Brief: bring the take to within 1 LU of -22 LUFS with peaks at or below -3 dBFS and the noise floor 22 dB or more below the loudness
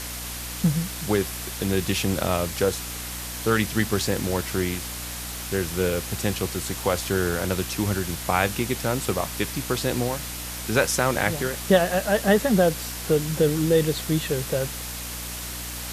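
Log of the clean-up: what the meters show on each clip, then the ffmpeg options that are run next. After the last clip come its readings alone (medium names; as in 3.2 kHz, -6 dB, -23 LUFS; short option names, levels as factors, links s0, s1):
hum 60 Hz; highest harmonic 300 Hz; hum level -36 dBFS; noise floor -34 dBFS; noise floor target -47 dBFS; loudness -25.0 LUFS; peak level -4.5 dBFS; loudness target -22.0 LUFS
-> -af "bandreject=f=60:t=h:w=6,bandreject=f=120:t=h:w=6,bandreject=f=180:t=h:w=6,bandreject=f=240:t=h:w=6,bandreject=f=300:t=h:w=6"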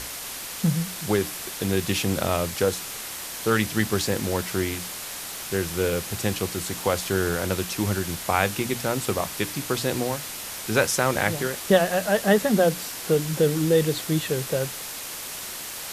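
hum not found; noise floor -35 dBFS; noise floor target -47 dBFS
-> -af "afftdn=nr=12:nf=-35"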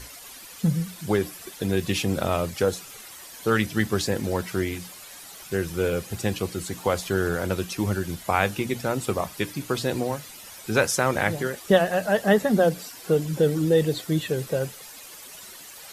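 noise floor -44 dBFS; noise floor target -47 dBFS
-> -af "afftdn=nr=6:nf=-44"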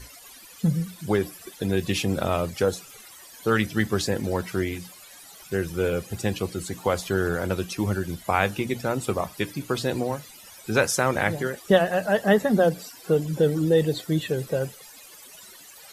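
noise floor -47 dBFS; noise floor target -48 dBFS
-> -af "afftdn=nr=6:nf=-47"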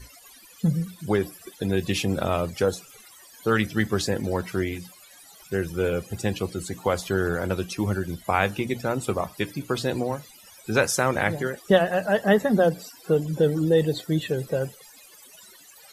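noise floor -50 dBFS; loudness -25.5 LUFS; peak level -5.0 dBFS; loudness target -22.0 LUFS
-> -af "volume=1.5,alimiter=limit=0.708:level=0:latency=1"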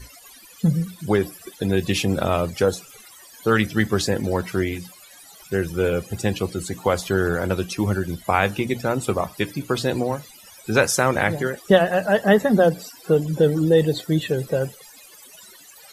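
loudness -22.0 LUFS; peak level -3.0 dBFS; noise floor -47 dBFS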